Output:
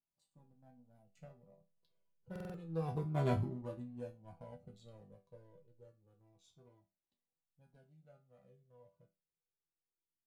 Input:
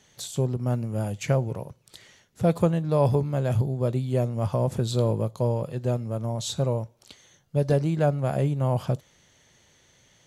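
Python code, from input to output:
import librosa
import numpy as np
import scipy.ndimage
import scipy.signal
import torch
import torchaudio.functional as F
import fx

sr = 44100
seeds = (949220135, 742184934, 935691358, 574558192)

p1 = fx.wiener(x, sr, points=25)
p2 = fx.doppler_pass(p1, sr, speed_mps=19, closest_m=1.7, pass_at_s=3.26)
p3 = fx.resonator_bank(p2, sr, root=52, chord='minor', decay_s=0.27)
p4 = fx.backlash(p3, sr, play_db=-57.0)
p5 = p3 + (p4 * librosa.db_to_amplitude(-7.5))
p6 = fx.buffer_glitch(p5, sr, at_s=(2.31,), block=2048, repeats=4)
p7 = fx.comb_cascade(p6, sr, direction='falling', hz=0.29)
y = p7 * librosa.db_to_amplitude(15.5)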